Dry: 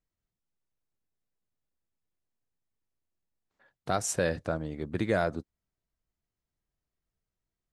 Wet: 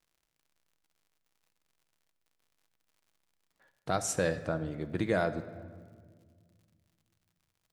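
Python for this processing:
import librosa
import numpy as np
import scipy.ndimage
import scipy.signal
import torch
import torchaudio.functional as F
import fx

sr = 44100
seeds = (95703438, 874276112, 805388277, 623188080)

y = fx.dmg_crackle(x, sr, seeds[0], per_s=100.0, level_db=-56.0)
y = fx.room_shoebox(y, sr, seeds[1], volume_m3=2400.0, walls='mixed', distance_m=0.62)
y = y * librosa.db_to_amplitude(-2.0)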